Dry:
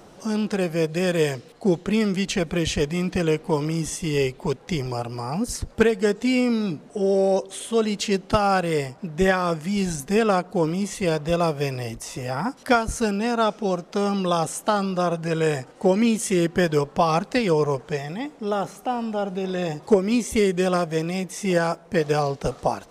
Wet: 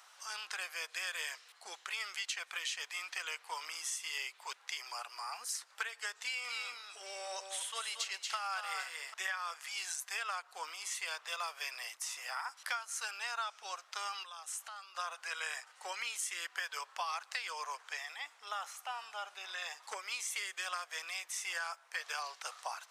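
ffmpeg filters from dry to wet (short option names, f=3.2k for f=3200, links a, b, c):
-filter_complex "[0:a]asettb=1/sr,asplit=3[a][b][c];[a]atrim=end=6.214[d];[b]atrim=start=6.21:end=9.14,asetpts=PTS-STARTPTS,afade=t=in:d=0.004:c=qsin,afade=t=out:st=2.926:d=0.004:c=qsin,aecho=1:1:230|292|790:0.473|0.133|0.112,atrim=end_sample=129213[e];[c]atrim=start=9.136[f];[d][e]acrossfade=d=0.004:c1=hsin:c2=qsin[g];[g][f]acrossfade=d=0.004:c1=qsin:c2=hsin,asettb=1/sr,asplit=3[h][i][j];[h]atrim=end=14.234[k];[i]atrim=start=14.23:end=14.95,asetpts=PTS-STARTPTS,afade=t=in:d=0.004:c=qsin,afade=t=out:st=0.716:d=0.004:c=qsin,acompressor=threshold=-32dB:ratio=20:attack=3.2:release=140:knee=1:detection=peak[l];[j]atrim=start=14.946[m];[k][l]acrossfade=d=0.004:c1=hsin:c2=qsin[n];[n][m]acrossfade=d=0.004:c1=qsin:c2=hsin,highpass=f=1.1k:w=0.5412,highpass=f=1.1k:w=1.3066,acompressor=threshold=-32dB:ratio=5,volume=-3.5dB"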